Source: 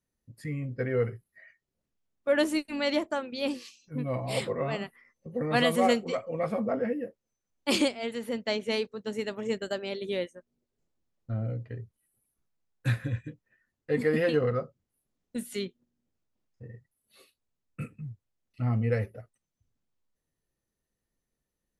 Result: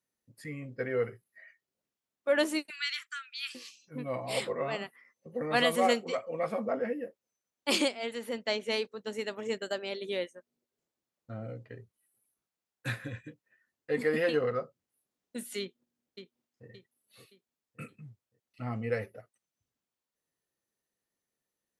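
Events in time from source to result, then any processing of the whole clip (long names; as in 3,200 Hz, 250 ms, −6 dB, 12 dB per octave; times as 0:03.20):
0:02.70–0:03.55: Butterworth high-pass 1,300 Hz 72 dB per octave
0:15.60–0:16.68: delay throw 570 ms, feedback 40%, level −8.5 dB
whole clip: high-pass filter 400 Hz 6 dB per octave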